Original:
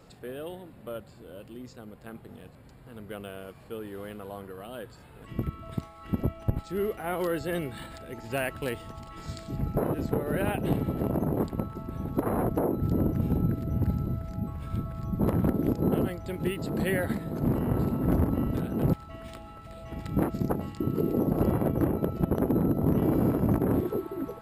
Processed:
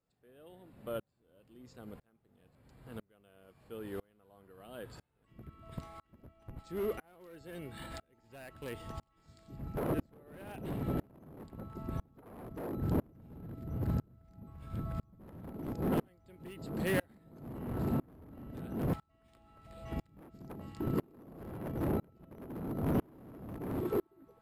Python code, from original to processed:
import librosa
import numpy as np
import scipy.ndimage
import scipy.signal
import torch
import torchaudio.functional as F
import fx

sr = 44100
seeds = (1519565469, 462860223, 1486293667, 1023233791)

y = np.clip(x, -10.0 ** (-25.5 / 20.0), 10.0 ** (-25.5 / 20.0))
y = fx.tremolo_decay(y, sr, direction='swelling', hz=1.0, depth_db=34)
y = F.gain(torch.from_numpy(y), 1.0).numpy()